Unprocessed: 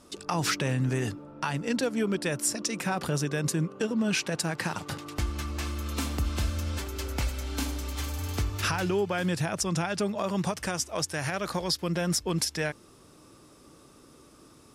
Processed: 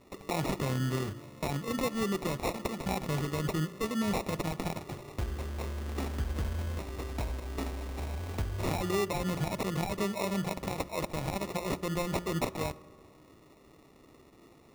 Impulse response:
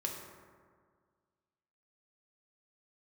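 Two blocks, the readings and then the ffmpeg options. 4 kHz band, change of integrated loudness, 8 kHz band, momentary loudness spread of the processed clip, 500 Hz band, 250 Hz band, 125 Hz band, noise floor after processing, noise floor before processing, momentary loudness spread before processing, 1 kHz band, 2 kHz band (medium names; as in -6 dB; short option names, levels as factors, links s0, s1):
-8.0 dB, -4.0 dB, -11.0 dB, 7 LU, -2.5 dB, -3.5 dB, -3.5 dB, -58 dBFS, -55 dBFS, 6 LU, -2.0 dB, -7.0 dB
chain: -filter_complex "[0:a]bandreject=f=58.6:t=h:w=4,bandreject=f=117.2:t=h:w=4,bandreject=f=175.8:t=h:w=4,bandreject=f=234.4:t=h:w=4,bandreject=f=293:t=h:w=4,bandreject=f=351.6:t=h:w=4,acrusher=samples=28:mix=1:aa=0.000001,asplit=2[s0][s1];[1:a]atrim=start_sample=2205[s2];[s1][s2]afir=irnorm=-1:irlink=0,volume=0.178[s3];[s0][s3]amix=inputs=2:normalize=0,volume=0.596"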